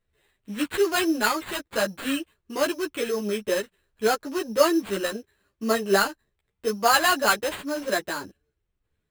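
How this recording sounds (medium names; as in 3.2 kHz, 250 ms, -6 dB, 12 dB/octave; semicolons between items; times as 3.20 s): aliases and images of a low sample rate 5.7 kHz, jitter 0%; a shimmering, thickened sound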